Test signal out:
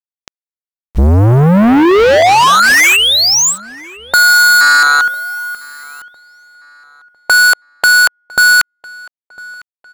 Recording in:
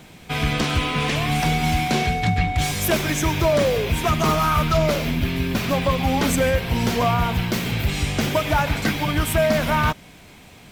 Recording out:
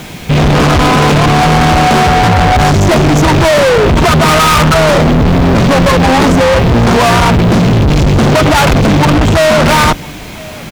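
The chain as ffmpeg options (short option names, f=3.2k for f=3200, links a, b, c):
-filter_complex "[0:a]afwtdn=0.0794,aresample=16000,aeval=exprs='0.398*sin(PI/2*1.58*val(0)/0.398)':c=same,aresample=44100,apsyclip=18dB,asoftclip=type=tanh:threshold=-15dB,acrusher=bits=6:mix=0:aa=0.000001,asplit=2[a][b];[b]adelay=1003,lowpass=f=4k:p=1,volume=-23dB,asplit=2[c][d];[d]adelay=1003,lowpass=f=4k:p=1,volume=0.4,asplit=2[e][f];[f]adelay=1003,lowpass=f=4k:p=1,volume=0.4[g];[a][c][e][g]amix=inputs=4:normalize=0,volume=8.5dB"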